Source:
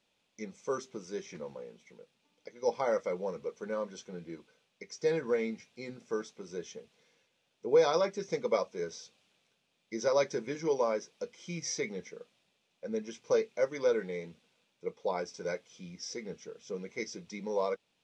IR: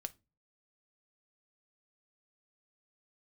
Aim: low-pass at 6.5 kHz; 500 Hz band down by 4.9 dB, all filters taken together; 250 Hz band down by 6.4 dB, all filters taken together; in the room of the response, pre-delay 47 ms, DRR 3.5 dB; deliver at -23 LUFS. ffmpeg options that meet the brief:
-filter_complex "[0:a]lowpass=6500,equalizer=f=250:t=o:g=-8,equalizer=f=500:t=o:g=-3.5,asplit=2[s0][s1];[1:a]atrim=start_sample=2205,adelay=47[s2];[s1][s2]afir=irnorm=-1:irlink=0,volume=0.944[s3];[s0][s3]amix=inputs=2:normalize=0,volume=4.73"

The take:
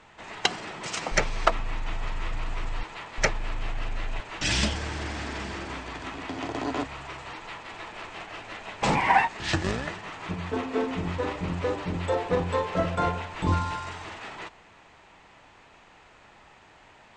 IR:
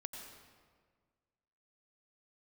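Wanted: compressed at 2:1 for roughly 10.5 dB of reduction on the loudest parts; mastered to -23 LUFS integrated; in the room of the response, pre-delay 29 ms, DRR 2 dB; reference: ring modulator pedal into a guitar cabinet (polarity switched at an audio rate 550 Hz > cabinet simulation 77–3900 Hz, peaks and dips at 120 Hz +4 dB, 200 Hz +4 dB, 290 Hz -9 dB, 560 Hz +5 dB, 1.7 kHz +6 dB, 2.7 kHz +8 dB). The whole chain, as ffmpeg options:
-filter_complex "[0:a]acompressor=threshold=0.0158:ratio=2,asplit=2[s0][s1];[1:a]atrim=start_sample=2205,adelay=29[s2];[s1][s2]afir=irnorm=-1:irlink=0,volume=1.06[s3];[s0][s3]amix=inputs=2:normalize=0,aeval=exprs='val(0)*sgn(sin(2*PI*550*n/s))':c=same,highpass=77,equalizer=f=120:t=q:w=4:g=4,equalizer=f=200:t=q:w=4:g=4,equalizer=f=290:t=q:w=4:g=-9,equalizer=f=560:t=q:w=4:g=5,equalizer=f=1700:t=q:w=4:g=6,equalizer=f=2700:t=q:w=4:g=8,lowpass=f=3900:w=0.5412,lowpass=f=3900:w=1.3066,volume=2"

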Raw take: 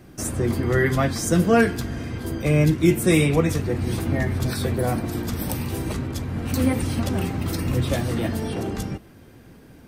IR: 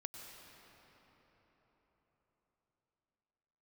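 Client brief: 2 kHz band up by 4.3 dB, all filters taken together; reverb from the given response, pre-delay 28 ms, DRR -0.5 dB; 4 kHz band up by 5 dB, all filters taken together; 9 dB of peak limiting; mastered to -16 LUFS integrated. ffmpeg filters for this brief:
-filter_complex "[0:a]equalizer=f=2000:t=o:g=4,equalizer=f=4000:t=o:g=5,alimiter=limit=0.237:level=0:latency=1,asplit=2[s0][s1];[1:a]atrim=start_sample=2205,adelay=28[s2];[s1][s2]afir=irnorm=-1:irlink=0,volume=1.5[s3];[s0][s3]amix=inputs=2:normalize=0,volume=1.88"

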